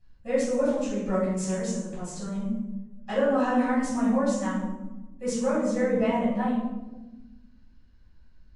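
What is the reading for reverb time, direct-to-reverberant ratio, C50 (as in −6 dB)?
1.1 s, −11.0 dB, 1.0 dB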